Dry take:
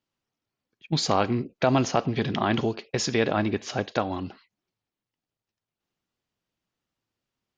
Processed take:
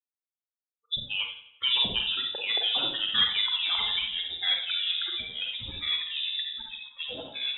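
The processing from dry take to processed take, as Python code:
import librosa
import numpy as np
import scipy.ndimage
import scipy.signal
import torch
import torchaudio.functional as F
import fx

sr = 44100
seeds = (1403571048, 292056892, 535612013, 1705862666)

y = fx.bin_expand(x, sr, power=3.0)
y = fx.highpass(y, sr, hz=fx.line((0.96, 240.0), (1.48, 600.0)), slope=24, at=(0.96, 1.48), fade=0.02)
y = fx.rider(y, sr, range_db=4, speed_s=2.0)
y = fx.quant_float(y, sr, bits=6)
y = 10.0 ** (-17.5 / 20.0) * np.tanh(y / 10.0 ** (-17.5 / 20.0))
y = fx.rev_schroeder(y, sr, rt60_s=0.31, comb_ms=31, drr_db=1.5)
y = fx.echo_pitch(y, sr, ms=688, semitones=-3, count=3, db_per_echo=-3.0)
y = fx.echo_feedback(y, sr, ms=88, feedback_pct=52, wet_db=-14.5)
y = fx.freq_invert(y, sr, carrier_hz=3700)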